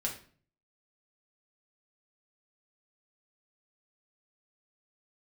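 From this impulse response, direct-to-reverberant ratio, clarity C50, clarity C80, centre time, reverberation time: -2.0 dB, 9.0 dB, 13.5 dB, 20 ms, 0.45 s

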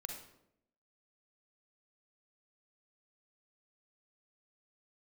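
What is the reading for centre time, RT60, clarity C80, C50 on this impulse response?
33 ms, 0.80 s, 8.0 dB, 3.5 dB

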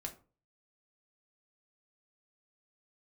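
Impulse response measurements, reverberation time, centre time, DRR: 0.35 s, 10 ms, 2.0 dB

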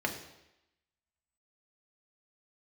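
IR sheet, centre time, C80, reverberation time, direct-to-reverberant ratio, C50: 19 ms, 11.0 dB, 0.90 s, 1.5 dB, 8.5 dB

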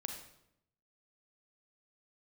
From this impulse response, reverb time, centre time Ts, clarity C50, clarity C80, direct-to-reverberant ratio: 0.80 s, 28 ms, 5.0 dB, 8.0 dB, 3.5 dB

